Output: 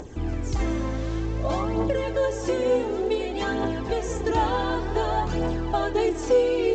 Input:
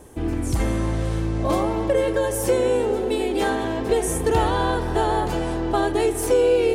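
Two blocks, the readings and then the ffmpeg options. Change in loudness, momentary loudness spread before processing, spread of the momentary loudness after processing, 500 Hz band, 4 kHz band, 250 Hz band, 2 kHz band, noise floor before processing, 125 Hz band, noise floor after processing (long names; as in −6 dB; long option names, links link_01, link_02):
−3.5 dB, 5 LU, 6 LU, −3.5 dB, −3.5 dB, −3.5 dB, −3.0 dB, −26 dBFS, −3.5 dB, −31 dBFS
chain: -af "aphaser=in_gain=1:out_gain=1:delay=4:decay=0.48:speed=0.55:type=triangular,acompressor=mode=upward:threshold=-27dB:ratio=2.5,volume=-4.5dB" -ar 16000 -c:a pcm_mulaw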